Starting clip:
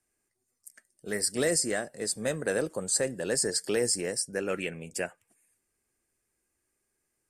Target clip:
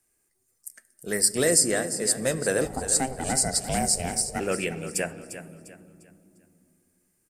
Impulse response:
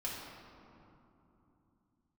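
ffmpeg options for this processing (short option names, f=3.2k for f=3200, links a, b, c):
-filter_complex "[0:a]asplit=2[a][b];[1:a]atrim=start_sample=2205,lowshelf=f=450:g=11[c];[b][c]afir=irnorm=-1:irlink=0,volume=-17dB[d];[a][d]amix=inputs=2:normalize=0,asplit=3[e][f][g];[e]afade=t=out:st=2.64:d=0.02[h];[f]aeval=exprs='val(0)*sin(2*PI*260*n/s)':c=same,afade=t=in:st=2.64:d=0.02,afade=t=out:st=4.39:d=0.02[i];[g]afade=t=in:st=4.39:d=0.02[j];[h][i][j]amix=inputs=3:normalize=0,highshelf=f=8.9k:g=10.5,aecho=1:1:350|700|1050|1400:0.251|0.0879|0.0308|0.0108,volume=2.5dB"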